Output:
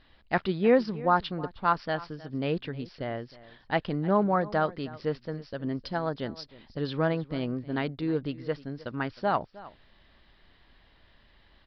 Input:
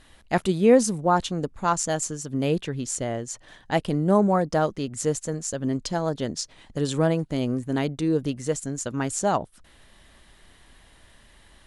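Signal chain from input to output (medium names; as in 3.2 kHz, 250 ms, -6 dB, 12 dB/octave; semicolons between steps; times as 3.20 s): dynamic bell 1.5 kHz, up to +7 dB, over -39 dBFS, Q 0.91; on a send: delay 312 ms -19 dB; on the sum: resampled via 11.025 kHz; trim -6 dB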